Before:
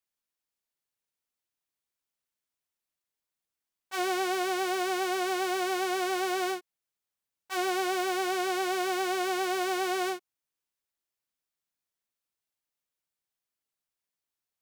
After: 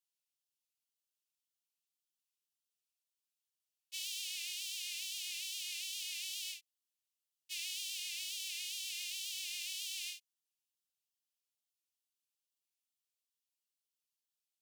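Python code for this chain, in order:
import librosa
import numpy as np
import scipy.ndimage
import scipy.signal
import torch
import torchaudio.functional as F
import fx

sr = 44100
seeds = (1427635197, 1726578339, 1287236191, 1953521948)

y = scipy.signal.sosfilt(scipy.signal.ellip(4, 1.0, 50, 2700.0, 'highpass', fs=sr, output='sos'), x)
y = fx.wow_flutter(y, sr, seeds[0], rate_hz=2.1, depth_cents=110.0)
y = F.gain(torch.from_numpy(y), -1.5).numpy()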